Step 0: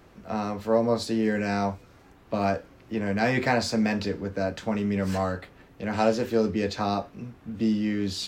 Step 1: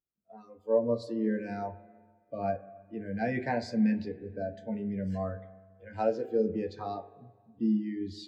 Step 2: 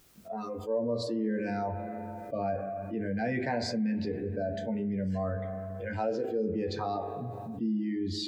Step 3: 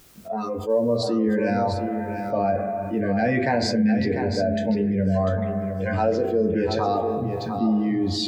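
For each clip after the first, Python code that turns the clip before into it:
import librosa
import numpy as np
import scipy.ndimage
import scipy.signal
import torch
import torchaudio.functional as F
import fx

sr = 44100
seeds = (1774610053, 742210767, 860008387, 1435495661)

y1 = fx.noise_reduce_blind(x, sr, reduce_db=17)
y1 = fx.rev_spring(y1, sr, rt60_s=2.3, pass_ms=(42, 51), chirp_ms=80, drr_db=9.0)
y1 = fx.spectral_expand(y1, sr, expansion=1.5)
y1 = y1 * librosa.db_to_amplitude(-5.0)
y2 = fx.env_flatten(y1, sr, amount_pct=70)
y2 = y2 * librosa.db_to_amplitude(-6.5)
y3 = y2 + 10.0 ** (-7.5 / 20.0) * np.pad(y2, (int(697 * sr / 1000.0), 0))[:len(y2)]
y3 = y3 * librosa.db_to_amplitude(9.0)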